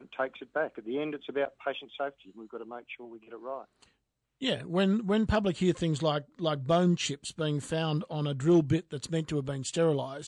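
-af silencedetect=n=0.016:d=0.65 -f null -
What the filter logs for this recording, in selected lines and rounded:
silence_start: 3.61
silence_end: 4.42 | silence_duration: 0.81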